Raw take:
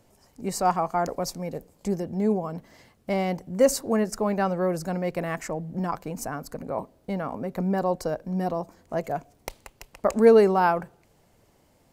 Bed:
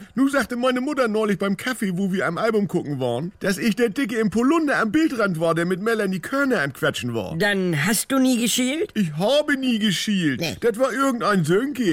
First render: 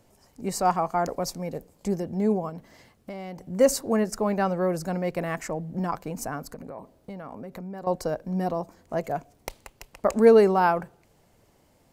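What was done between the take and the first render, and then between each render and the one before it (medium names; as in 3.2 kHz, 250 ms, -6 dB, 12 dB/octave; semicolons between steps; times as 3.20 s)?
2.49–3.45 s: compression, threshold -34 dBFS; 6.54–7.87 s: compression 4:1, threshold -36 dBFS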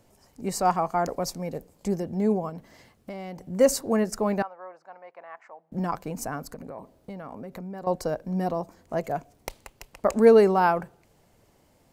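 4.42–5.72 s: ladder band-pass 1.1 kHz, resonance 35%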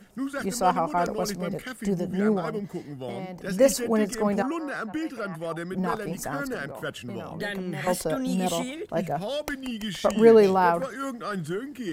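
add bed -12 dB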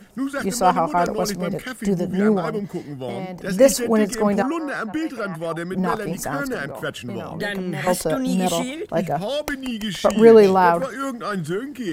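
trim +5.5 dB; peak limiter -1 dBFS, peak gain reduction 1 dB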